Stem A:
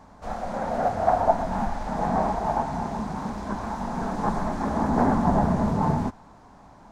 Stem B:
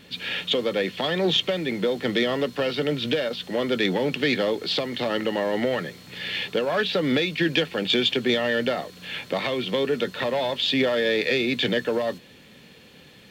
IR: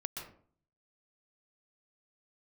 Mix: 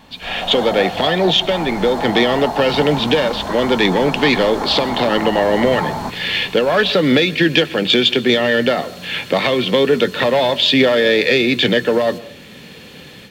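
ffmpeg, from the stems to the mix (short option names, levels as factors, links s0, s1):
-filter_complex "[0:a]acrossover=split=460|3000[s0][s1][s2];[s0]acompressor=threshold=0.00794:ratio=2[s3];[s3][s1][s2]amix=inputs=3:normalize=0,acompressor=threshold=0.0316:ratio=6,volume=1.19[s4];[1:a]volume=0.891,asplit=2[s5][s6];[s6]volume=0.211[s7];[2:a]atrim=start_sample=2205[s8];[s7][s8]afir=irnorm=-1:irlink=0[s9];[s4][s5][s9]amix=inputs=3:normalize=0,dynaudnorm=f=250:g=3:m=3.76"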